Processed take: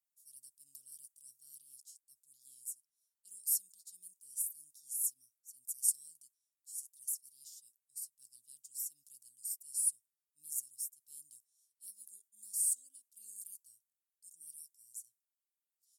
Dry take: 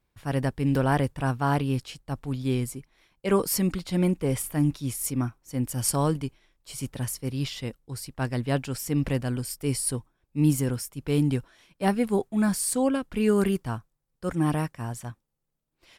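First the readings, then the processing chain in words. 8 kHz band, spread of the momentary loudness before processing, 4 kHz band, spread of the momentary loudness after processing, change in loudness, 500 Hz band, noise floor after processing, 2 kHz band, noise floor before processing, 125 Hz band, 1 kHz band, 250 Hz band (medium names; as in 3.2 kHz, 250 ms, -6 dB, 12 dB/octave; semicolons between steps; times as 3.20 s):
-3.5 dB, 12 LU, -20.0 dB, 23 LU, -10.5 dB, under -40 dB, under -85 dBFS, under -40 dB, -78 dBFS, under -40 dB, under -40 dB, under -40 dB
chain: inverse Chebyshev high-pass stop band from 2.3 kHz, stop band 60 dB; trim -2.5 dB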